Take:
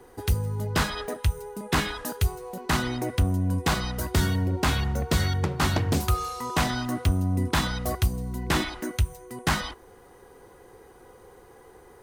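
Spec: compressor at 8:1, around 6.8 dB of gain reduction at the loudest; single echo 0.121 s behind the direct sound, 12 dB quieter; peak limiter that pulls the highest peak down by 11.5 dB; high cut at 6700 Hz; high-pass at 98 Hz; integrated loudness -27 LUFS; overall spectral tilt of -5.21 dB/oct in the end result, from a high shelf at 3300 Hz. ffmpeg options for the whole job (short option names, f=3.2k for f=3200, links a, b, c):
-af "highpass=98,lowpass=6.7k,highshelf=f=3.3k:g=-6.5,acompressor=threshold=-28dB:ratio=8,alimiter=level_in=3.5dB:limit=-24dB:level=0:latency=1,volume=-3.5dB,aecho=1:1:121:0.251,volume=10dB"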